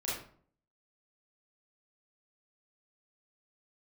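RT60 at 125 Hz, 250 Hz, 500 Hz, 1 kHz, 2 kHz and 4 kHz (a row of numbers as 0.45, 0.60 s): 0.65, 0.60, 0.55, 0.50, 0.40, 0.35 s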